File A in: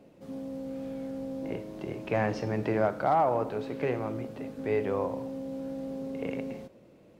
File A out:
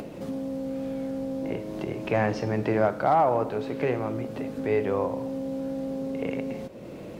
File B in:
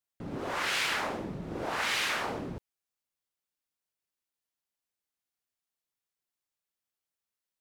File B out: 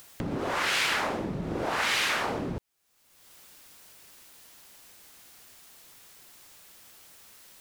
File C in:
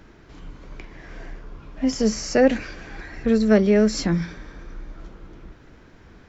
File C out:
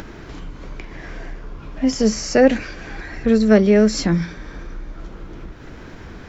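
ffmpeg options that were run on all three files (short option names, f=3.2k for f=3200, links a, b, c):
-af "acompressor=mode=upward:threshold=-30dB:ratio=2.5,volume=3.5dB"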